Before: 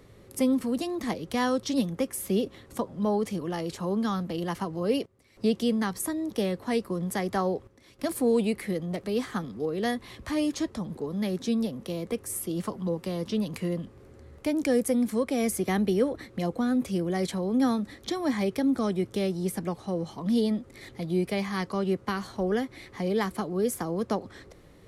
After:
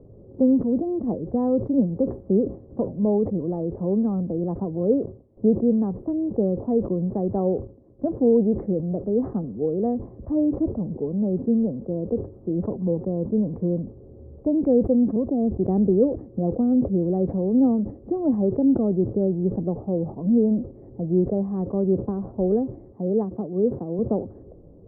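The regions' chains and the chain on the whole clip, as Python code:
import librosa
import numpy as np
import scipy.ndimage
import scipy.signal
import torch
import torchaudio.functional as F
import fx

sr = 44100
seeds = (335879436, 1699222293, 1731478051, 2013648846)

y = fx.chain(x, sr, fx.steep_lowpass(hz=1100.0, slope=36),
    fx.peak_eq(hz=510.0, db=-7.0, octaves=0.37), at=(15.16, 15.65))
y = fx.chain(y, sr, fx.highpass(hz=87.0, slope=24),
    fx.upward_expand(threshold_db=-37.0, expansion=1.5), at=(22.92, 23.99))
y = scipy.signal.sosfilt(scipy.signal.cheby2(4, 70, 2800.0, 'lowpass', fs=sr, output='sos'), y)
y = fx.sustainer(y, sr, db_per_s=140.0)
y = y * 10.0 ** (6.0 / 20.0)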